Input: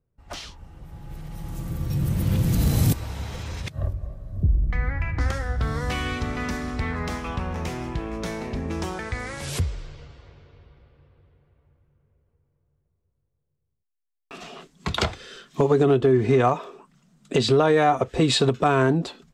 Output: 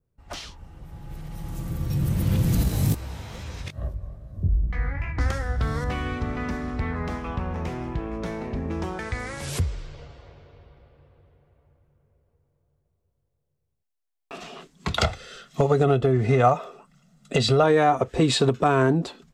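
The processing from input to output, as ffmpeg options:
-filter_complex "[0:a]asettb=1/sr,asplit=3[s0][s1][s2];[s0]atrim=end=2.634[s3];[s1]atrim=start=2.63:end=5.18,asetpts=PTS-STARTPTS,afade=t=in:d=0.004:c=qsin,afade=t=out:st=2.546:d=0.004:c=qsin,flanger=delay=15:depth=7:speed=2.4[s4];[s2]atrim=start=5.176[s5];[s3][s4]acrossfade=d=0.004:c1=hsin:c2=qsin[s6];[s6][s5]acrossfade=d=0.004:c1=qsin:c2=hsin,asettb=1/sr,asplit=3[s7][s8][s9];[s7]atrim=end=5.844[s10];[s8]atrim=start=5.84:end=8.99,asetpts=PTS-STARTPTS,afade=t=in:d=0.004:c=qsin,afade=t=out:st=3.146:d=0.004:c=qsin,highshelf=f=3100:g=-12[s11];[s9]atrim=start=8.986[s12];[s10][s11]acrossfade=d=0.004:c1=hsin:c2=qsin[s13];[s13][s12]acrossfade=d=0.004:c1=qsin:c2=hsin,asettb=1/sr,asplit=3[s14][s15][s16];[s14]atrim=end=9.934[s17];[s15]atrim=start=9.93:end=14.4,asetpts=PTS-STARTPTS,afade=t=in:d=0.004:c=qsin,afade=t=out:st=4.466:d=0.004:c=qsin,equalizer=f=650:w=1.5:g=6.5[s18];[s16]atrim=start=14.396[s19];[s17][s18]acrossfade=d=0.004:c1=hsin:c2=qsin[s20];[s20][s19]acrossfade=d=0.004:c1=qsin:c2=hsin,asettb=1/sr,asplit=3[s21][s22][s23];[s21]atrim=end=14.974[s24];[s22]atrim=start=14.97:end=17.64,asetpts=PTS-STARTPTS,afade=t=in:d=0.004:c=qsin,afade=t=out:st=2.666:d=0.004:c=qsin,aecho=1:1:1.5:0.55,atrim=end_sample=117747[s25];[s23]atrim=start=17.636[s26];[s24][s25]acrossfade=d=0.004:c1=hsin:c2=qsin[s27];[s27][s26]acrossfade=d=0.004:c1=qsin:c2=hsin,adynamicequalizer=threshold=0.01:dfrequency=3400:dqfactor=0.86:tfrequency=3400:tqfactor=0.86:attack=5:release=100:ratio=0.375:range=2:mode=cutabove:tftype=bell"

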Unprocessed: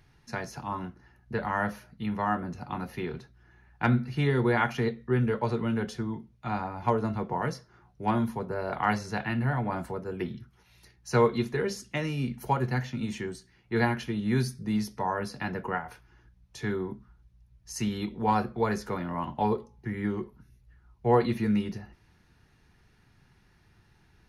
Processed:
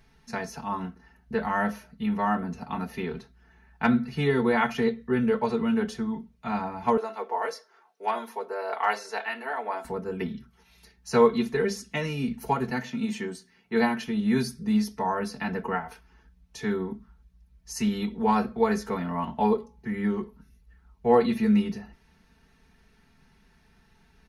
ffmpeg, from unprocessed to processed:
-filter_complex "[0:a]asettb=1/sr,asplit=3[s0][s1][s2];[s0]atrim=end=6.974[s3];[s1]atrim=start=6.97:end=9.85,asetpts=PTS-STARTPTS,afade=t=in:d=0.004:c=qsin,afade=t=out:st=2.876:d=0.004:c=qsin,highpass=f=410:w=0.5412,highpass=f=410:w=1.3066[s4];[s2]atrim=start=9.846[s5];[s3][s4]acrossfade=d=0.004:c1=hsin:c2=qsin[s6];[s6][s5]acrossfade=d=0.004:c1=qsin:c2=hsin,asettb=1/sr,asplit=3[s7][s8][s9];[s7]atrim=end=12.704[s10];[s8]atrim=start=12.7:end=14.08,asetpts=PTS-STARTPTS,afade=t=in:d=0.004:c=qsin,afade=t=out:st=1.376:d=0.004:c=qsin,highpass=140[s11];[s9]atrim=start=14.076[s12];[s10][s11]acrossfade=d=0.004:c1=hsin:c2=qsin[s13];[s13][s12]acrossfade=d=0.004:c1=qsin:c2=hsin,aecho=1:1:4.5:0.84"

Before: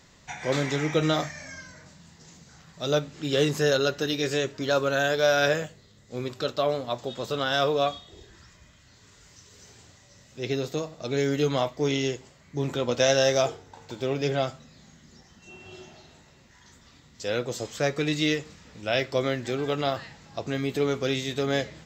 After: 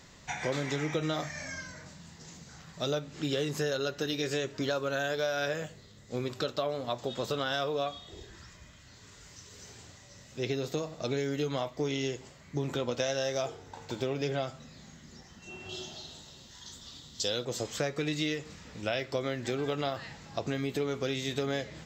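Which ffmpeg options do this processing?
-filter_complex "[0:a]asettb=1/sr,asplit=3[s0][s1][s2];[s0]atrim=end=15.694[s3];[s1]atrim=start=15.69:end=17.45,asetpts=PTS-STARTPTS,afade=t=in:d=0.004:c=qsin,afade=t=out:st=1.756:d=0.004:c=qsin,highshelf=f=2800:t=q:w=3:g=6[s4];[s2]atrim=start=17.446[s5];[s3][s4]acrossfade=d=0.004:c1=hsin:c2=qsin[s6];[s6][s5]acrossfade=d=0.004:c1=qsin:c2=hsin,acompressor=threshold=0.0316:ratio=6,volume=1.19"

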